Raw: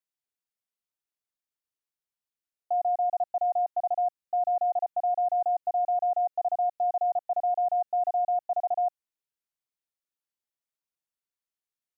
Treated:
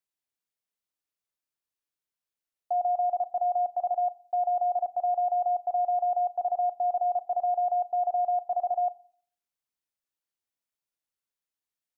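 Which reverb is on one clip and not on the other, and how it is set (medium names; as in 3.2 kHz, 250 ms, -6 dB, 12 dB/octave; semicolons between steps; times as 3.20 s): FDN reverb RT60 0.52 s, low-frequency decay 1.35×, high-frequency decay 0.9×, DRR 15 dB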